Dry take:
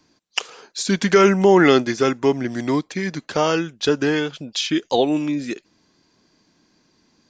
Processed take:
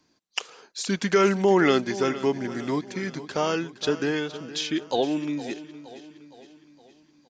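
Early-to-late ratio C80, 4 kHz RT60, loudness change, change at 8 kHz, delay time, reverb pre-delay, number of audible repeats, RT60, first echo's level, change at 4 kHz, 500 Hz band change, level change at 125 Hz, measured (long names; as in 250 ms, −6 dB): no reverb audible, no reverb audible, −6.0 dB, −6.0 dB, 465 ms, no reverb audible, 4, no reverb audible, −15.0 dB, −6.0 dB, −6.0 dB, −6.5 dB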